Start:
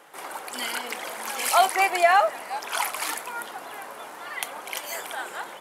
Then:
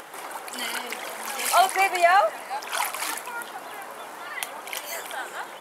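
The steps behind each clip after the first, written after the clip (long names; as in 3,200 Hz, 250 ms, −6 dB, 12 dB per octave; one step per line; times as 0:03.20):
upward compression, threshold −34 dBFS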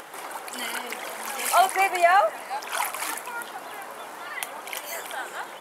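dynamic equaliser 4,400 Hz, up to −4 dB, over −39 dBFS, Q 1.1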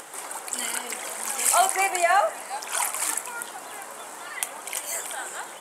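parametric band 8,200 Hz +13.5 dB 0.73 octaves
hum removal 85.59 Hz, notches 37
level −1.5 dB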